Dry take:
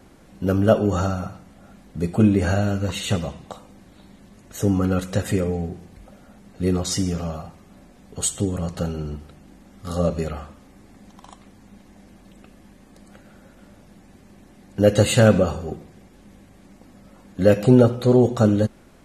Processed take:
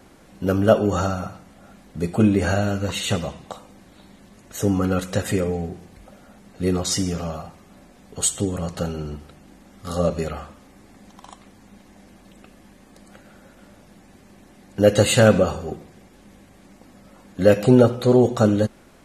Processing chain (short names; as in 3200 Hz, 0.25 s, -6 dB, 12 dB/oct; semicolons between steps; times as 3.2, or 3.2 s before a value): low shelf 290 Hz -5 dB; gain +2.5 dB